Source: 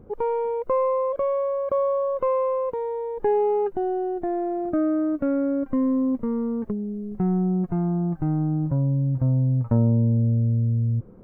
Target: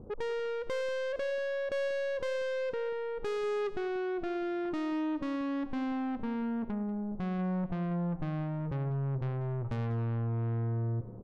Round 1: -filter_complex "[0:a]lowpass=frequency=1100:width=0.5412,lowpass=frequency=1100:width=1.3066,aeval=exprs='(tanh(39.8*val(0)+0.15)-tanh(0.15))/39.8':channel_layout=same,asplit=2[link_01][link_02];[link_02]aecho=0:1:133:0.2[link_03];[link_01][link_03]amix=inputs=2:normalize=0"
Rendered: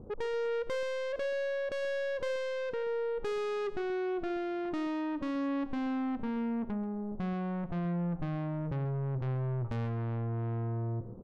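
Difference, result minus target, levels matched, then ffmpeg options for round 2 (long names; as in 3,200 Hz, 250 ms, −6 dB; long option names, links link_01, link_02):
echo 57 ms early
-filter_complex "[0:a]lowpass=frequency=1100:width=0.5412,lowpass=frequency=1100:width=1.3066,aeval=exprs='(tanh(39.8*val(0)+0.15)-tanh(0.15))/39.8':channel_layout=same,asplit=2[link_01][link_02];[link_02]aecho=0:1:190:0.2[link_03];[link_01][link_03]amix=inputs=2:normalize=0"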